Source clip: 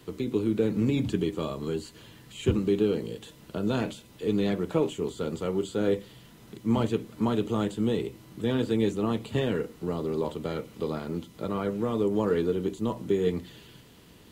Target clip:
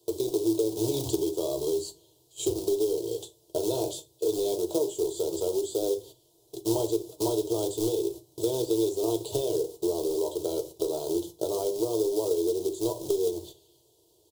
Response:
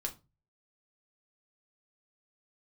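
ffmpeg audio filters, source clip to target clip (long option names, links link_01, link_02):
-filter_complex "[0:a]agate=range=-17dB:threshold=-42dB:ratio=16:detection=peak,highpass=frequency=100:poles=1,lowshelf=frequency=130:gain=6.5,acrossover=split=1700[link_01][link_02];[link_01]acrusher=bits=3:mode=log:mix=0:aa=0.000001[link_03];[link_03][link_02]amix=inputs=2:normalize=0,firequalizer=gain_entry='entry(150,0);entry(220,-26);entry(350,13);entry(870,6);entry(1300,-16);entry(1800,-26);entry(3400,7);entry(5200,12);entry(7900,14)':delay=0.05:min_phase=1,acompressor=threshold=-24dB:ratio=4,aecho=1:1:3.1:0.3,asplit=2[link_04][link_05];[1:a]atrim=start_sample=2205[link_06];[link_05][link_06]afir=irnorm=-1:irlink=0,volume=2.5dB[link_07];[link_04][link_07]amix=inputs=2:normalize=0,volume=-8.5dB"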